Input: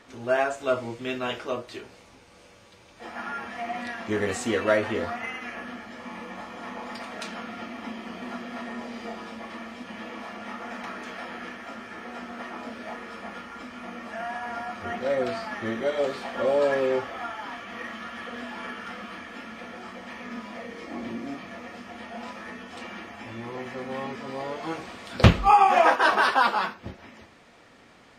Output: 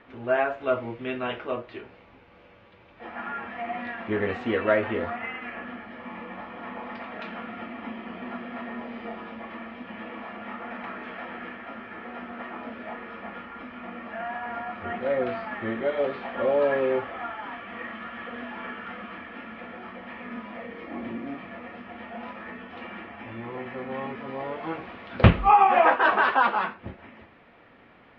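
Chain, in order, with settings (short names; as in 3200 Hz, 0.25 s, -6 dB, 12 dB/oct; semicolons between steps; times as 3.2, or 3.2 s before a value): LPF 2900 Hz 24 dB/oct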